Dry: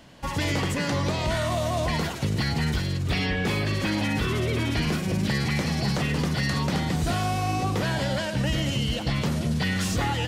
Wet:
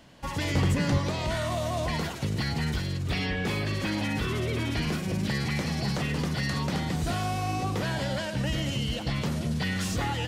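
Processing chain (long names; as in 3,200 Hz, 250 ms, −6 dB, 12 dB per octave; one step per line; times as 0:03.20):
0:00.55–0:00.98: low-shelf EQ 200 Hz +11.5 dB
level −3.5 dB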